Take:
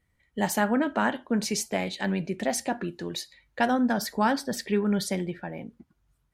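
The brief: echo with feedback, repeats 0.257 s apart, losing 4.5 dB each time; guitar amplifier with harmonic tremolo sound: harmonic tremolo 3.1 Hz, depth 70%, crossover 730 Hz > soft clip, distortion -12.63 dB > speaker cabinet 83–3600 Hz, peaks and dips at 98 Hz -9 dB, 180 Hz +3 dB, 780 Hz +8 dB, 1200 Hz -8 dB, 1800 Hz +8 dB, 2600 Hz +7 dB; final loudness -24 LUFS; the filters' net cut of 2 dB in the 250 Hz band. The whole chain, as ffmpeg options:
-filter_complex "[0:a]equalizer=f=250:t=o:g=-3.5,aecho=1:1:257|514|771|1028|1285|1542|1799|2056|2313:0.596|0.357|0.214|0.129|0.0772|0.0463|0.0278|0.0167|0.01,acrossover=split=730[a][b];[a]aeval=exprs='val(0)*(1-0.7/2+0.7/2*cos(2*PI*3.1*n/s))':c=same[c];[b]aeval=exprs='val(0)*(1-0.7/2-0.7/2*cos(2*PI*3.1*n/s))':c=same[d];[c][d]amix=inputs=2:normalize=0,asoftclip=threshold=-25.5dB,highpass=83,equalizer=f=98:t=q:w=4:g=-9,equalizer=f=180:t=q:w=4:g=3,equalizer=f=780:t=q:w=4:g=8,equalizer=f=1.2k:t=q:w=4:g=-8,equalizer=f=1.8k:t=q:w=4:g=8,equalizer=f=2.6k:t=q:w=4:g=7,lowpass=f=3.6k:w=0.5412,lowpass=f=3.6k:w=1.3066,volume=7.5dB"

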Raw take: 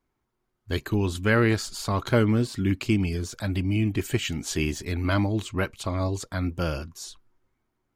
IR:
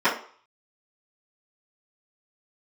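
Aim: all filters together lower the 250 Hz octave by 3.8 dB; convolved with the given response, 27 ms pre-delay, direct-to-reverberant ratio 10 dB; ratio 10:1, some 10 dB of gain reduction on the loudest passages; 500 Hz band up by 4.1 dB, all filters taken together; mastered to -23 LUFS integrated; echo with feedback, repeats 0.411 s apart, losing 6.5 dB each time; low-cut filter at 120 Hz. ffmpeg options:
-filter_complex "[0:a]highpass=120,equalizer=f=250:t=o:g=-7.5,equalizer=f=500:t=o:g=7.5,acompressor=threshold=-24dB:ratio=10,aecho=1:1:411|822|1233|1644|2055|2466:0.473|0.222|0.105|0.0491|0.0231|0.0109,asplit=2[a][b];[1:a]atrim=start_sample=2205,adelay=27[c];[b][c]afir=irnorm=-1:irlink=0,volume=-28.5dB[d];[a][d]amix=inputs=2:normalize=0,volume=7dB"

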